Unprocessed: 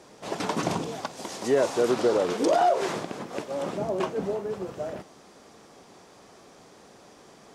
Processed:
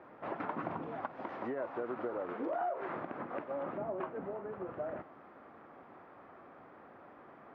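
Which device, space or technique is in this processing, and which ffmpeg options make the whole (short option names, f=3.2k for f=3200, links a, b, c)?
bass amplifier: -af "acompressor=threshold=-33dB:ratio=4,highpass=69,equalizer=f=78:t=q:w=4:g=-5,equalizer=f=130:t=q:w=4:g=-5,equalizer=f=190:t=q:w=4:g=-7,equalizer=f=430:t=q:w=4:g=-6,equalizer=f=1.3k:t=q:w=4:g=4,lowpass=f=2k:w=0.5412,lowpass=f=2k:w=1.3066,volume=-1.5dB"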